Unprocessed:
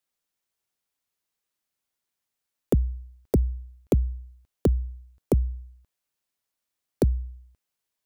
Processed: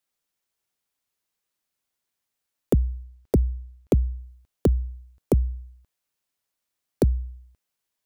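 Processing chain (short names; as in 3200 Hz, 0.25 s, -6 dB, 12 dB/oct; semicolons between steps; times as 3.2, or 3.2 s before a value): 3.03–4.18 high shelf 8300 Hz -4.5 dB; gain +1.5 dB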